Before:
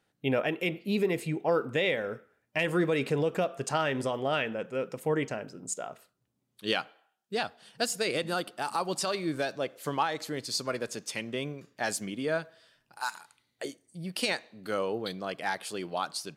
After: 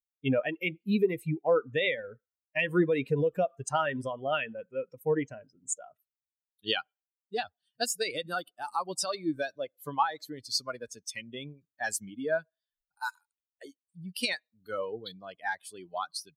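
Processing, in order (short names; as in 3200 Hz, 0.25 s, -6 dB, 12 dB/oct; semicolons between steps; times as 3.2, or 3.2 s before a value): per-bin expansion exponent 2; gain +4.5 dB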